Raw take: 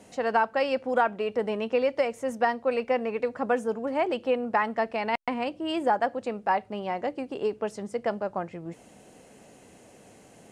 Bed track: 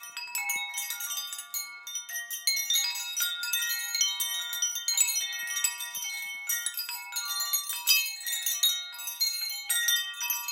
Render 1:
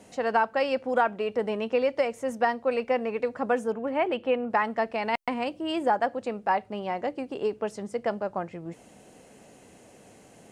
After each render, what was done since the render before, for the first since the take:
0:03.72–0:04.50: high shelf with overshoot 3,800 Hz −7.5 dB, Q 1.5
0:05.02–0:05.62: high-shelf EQ 7,900 Hz +7 dB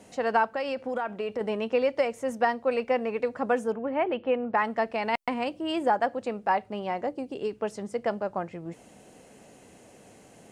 0:00.54–0:01.41: downward compressor, threshold −26 dBFS
0:03.76–0:04.58: high-frequency loss of the air 210 metres
0:07.03–0:07.60: parametric band 3,400 Hz → 510 Hz −9 dB 1.4 octaves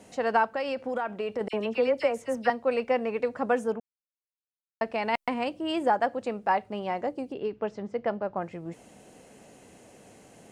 0:01.48–0:02.50: all-pass dispersion lows, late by 53 ms, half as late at 2,200 Hz
0:03.80–0:04.81: silence
0:07.32–0:08.42: high-frequency loss of the air 190 metres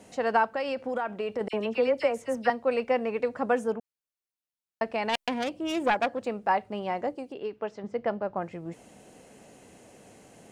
0:05.09–0:06.25: phase distortion by the signal itself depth 0.26 ms
0:07.15–0:07.84: low-shelf EQ 270 Hz −9.5 dB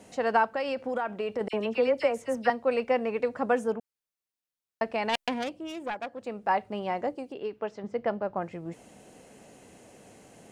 0:05.28–0:06.59: duck −9.5 dB, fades 0.48 s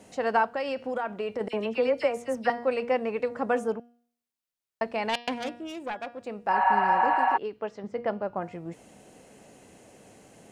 hum removal 238.2 Hz, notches 24
0:06.55–0:07.34: healed spectral selection 570–4,300 Hz before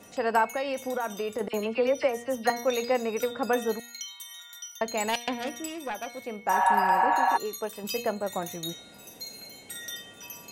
mix in bed track −12.5 dB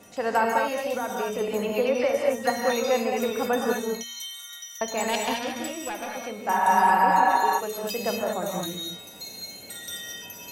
reverb whose tail is shaped and stops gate 250 ms rising, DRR 0 dB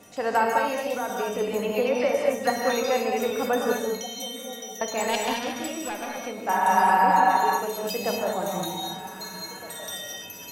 echo through a band-pass that steps 782 ms, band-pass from 230 Hz, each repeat 1.4 octaves, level −11.5 dB
rectangular room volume 510 cubic metres, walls mixed, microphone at 0.4 metres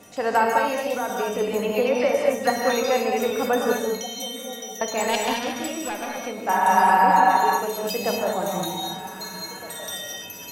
level +2.5 dB

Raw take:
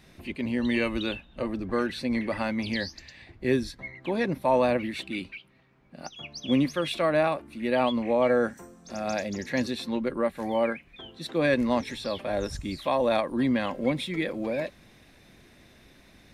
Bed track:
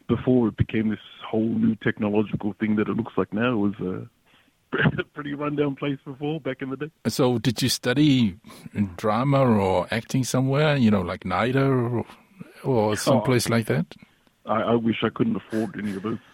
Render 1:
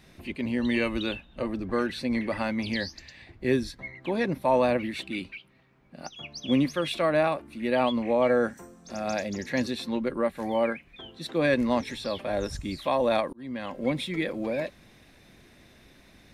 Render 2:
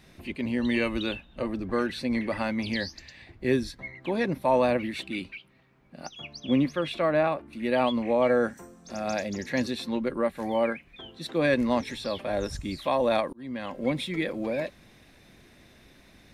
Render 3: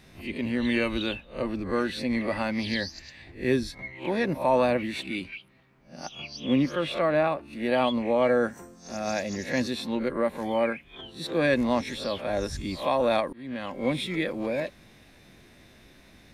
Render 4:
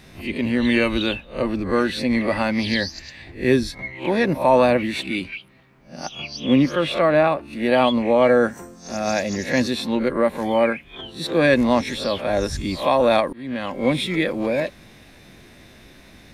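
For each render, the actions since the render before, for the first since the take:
0:13.33–0:13.96: fade in
0:06.36–0:07.53: high-shelf EQ 4,900 Hz −11.5 dB
peak hold with a rise ahead of every peak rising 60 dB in 0.30 s
level +7 dB

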